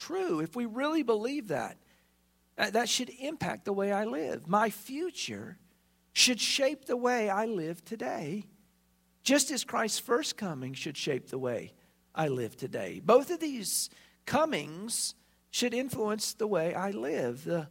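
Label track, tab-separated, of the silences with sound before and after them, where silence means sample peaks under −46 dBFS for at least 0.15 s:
1.730000	2.580000	silence
5.540000	6.160000	silence
8.450000	9.250000	silence
11.690000	12.150000	silence
14.020000	14.270000	silence
15.120000	15.530000	silence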